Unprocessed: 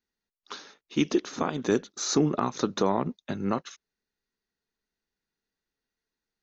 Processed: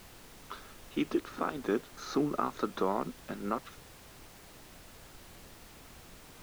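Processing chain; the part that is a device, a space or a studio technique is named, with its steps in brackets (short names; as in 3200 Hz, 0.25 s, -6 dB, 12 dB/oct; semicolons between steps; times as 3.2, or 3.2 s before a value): horn gramophone (BPF 210–3000 Hz; bell 1300 Hz +7 dB 0.26 oct; wow and flutter; pink noise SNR 15 dB); gain -5.5 dB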